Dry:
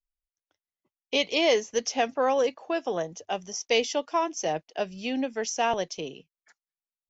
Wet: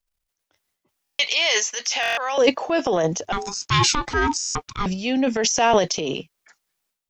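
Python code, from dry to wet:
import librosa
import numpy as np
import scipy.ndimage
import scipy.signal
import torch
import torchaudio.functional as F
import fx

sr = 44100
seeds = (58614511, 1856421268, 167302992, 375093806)

y = fx.highpass(x, sr, hz=1300.0, slope=12, at=(1.17, 2.38))
y = fx.ring_mod(y, sr, carrier_hz=600.0, at=(3.32, 4.86))
y = fx.transient(y, sr, attack_db=-3, sustain_db=11)
y = fx.buffer_glitch(y, sr, at_s=(1.03, 2.01, 4.39), block=1024, repeats=6)
y = F.gain(torch.from_numpy(y), 8.0).numpy()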